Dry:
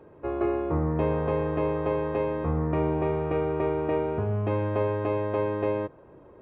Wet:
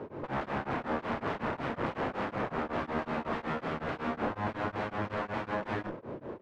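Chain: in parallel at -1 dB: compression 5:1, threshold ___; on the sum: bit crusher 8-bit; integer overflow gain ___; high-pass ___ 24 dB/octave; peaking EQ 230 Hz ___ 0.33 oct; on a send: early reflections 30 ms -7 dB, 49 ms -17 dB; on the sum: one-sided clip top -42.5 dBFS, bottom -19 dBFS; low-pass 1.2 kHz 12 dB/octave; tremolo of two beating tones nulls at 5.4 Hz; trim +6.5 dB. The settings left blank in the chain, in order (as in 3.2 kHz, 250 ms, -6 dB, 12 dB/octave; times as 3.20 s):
-36 dBFS, 26.5 dB, 92 Hz, +5.5 dB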